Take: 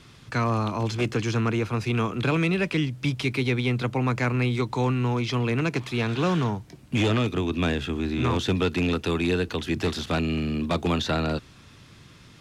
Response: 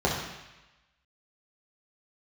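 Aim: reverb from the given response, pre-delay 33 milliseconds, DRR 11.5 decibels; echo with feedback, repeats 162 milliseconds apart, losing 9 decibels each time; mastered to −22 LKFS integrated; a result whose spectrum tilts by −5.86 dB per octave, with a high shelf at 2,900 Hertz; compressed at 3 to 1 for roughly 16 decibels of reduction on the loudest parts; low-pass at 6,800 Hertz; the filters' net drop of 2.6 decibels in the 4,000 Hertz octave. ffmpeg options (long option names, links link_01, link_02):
-filter_complex "[0:a]lowpass=6800,highshelf=frequency=2900:gain=4,equalizer=frequency=4000:width_type=o:gain=-6,acompressor=threshold=-43dB:ratio=3,aecho=1:1:162|324|486|648:0.355|0.124|0.0435|0.0152,asplit=2[link_01][link_02];[1:a]atrim=start_sample=2205,adelay=33[link_03];[link_02][link_03]afir=irnorm=-1:irlink=0,volume=-26dB[link_04];[link_01][link_04]amix=inputs=2:normalize=0,volume=17.5dB"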